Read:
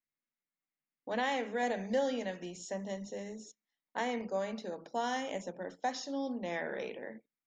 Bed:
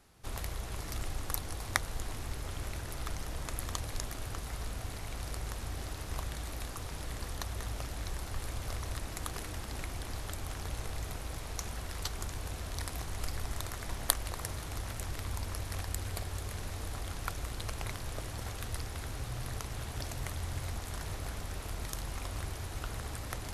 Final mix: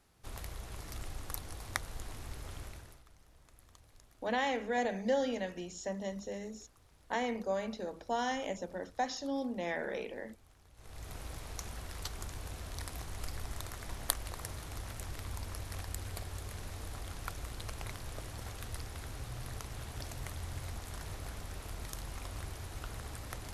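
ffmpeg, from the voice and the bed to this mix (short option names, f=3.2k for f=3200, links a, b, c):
-filter_complex "[0:a]adelay=3150,volume=0.5dB[a];[1:a]volume=14dB,afade=t=out:st=2.55:d=0.48:silence=0.125893,afade=t=in:st=10.75:d=0.45:silence=0.105925[b];[a][b]amix=inputs=2:normalize=0"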